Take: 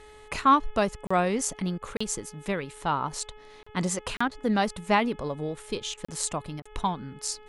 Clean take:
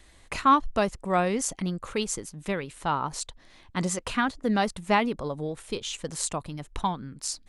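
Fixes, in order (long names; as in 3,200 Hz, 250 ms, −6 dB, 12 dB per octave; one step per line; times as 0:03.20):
hum removal 425 Hz, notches 8
repair the gap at 0:01.07/0:01.97/0:03.63/0:04.17/0:06.05/0:06.62, 35 ms
repair the gap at 0:01.78/0:04.28/0:05.94/0:06.60, 33 ms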